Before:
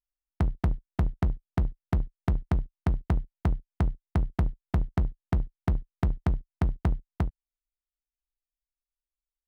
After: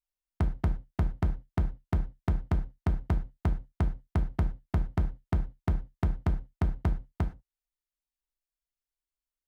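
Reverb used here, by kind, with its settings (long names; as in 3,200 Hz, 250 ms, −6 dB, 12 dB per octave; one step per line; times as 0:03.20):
reverb whose tail is shaped and stops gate 140 ms falling, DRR 7.5 dB
level −2.5 dB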